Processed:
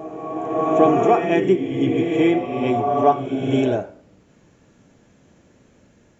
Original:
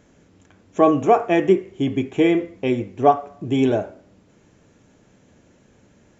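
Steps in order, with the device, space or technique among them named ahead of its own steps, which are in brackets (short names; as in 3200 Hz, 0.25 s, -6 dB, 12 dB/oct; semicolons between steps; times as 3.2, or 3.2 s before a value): reverse reverb (reverse; reverb RT60 2.7 s, pre-delay 29 ms, DRR 2 dB; reverse); gain -1.5 dB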